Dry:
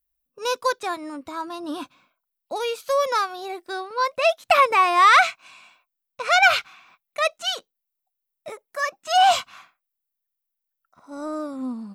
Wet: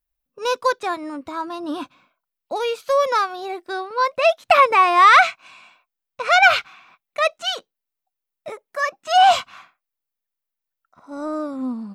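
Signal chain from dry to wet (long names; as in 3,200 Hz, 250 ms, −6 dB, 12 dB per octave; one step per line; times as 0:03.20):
high-shelf EQ 5,600 Hz −9 dB
level +3.5 dB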